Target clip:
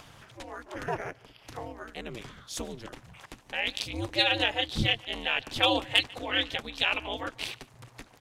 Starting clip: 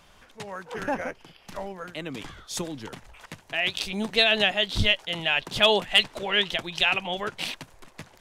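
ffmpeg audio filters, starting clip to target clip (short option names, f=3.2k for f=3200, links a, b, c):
-filter_complex "[0:a]asplit=2[a][b];[b]adelay=145.8,volume=-23dB,highshelf=f=4k:g=-3.28[c];[a][c]amix=inputs=2:normalize=0,aeval=exprs='val(0)*sin(2*PI*120*n/s)':c=same,acompressor=mode=upward:threshold=-41dB:ratio=2.5,volume=-1.5dB"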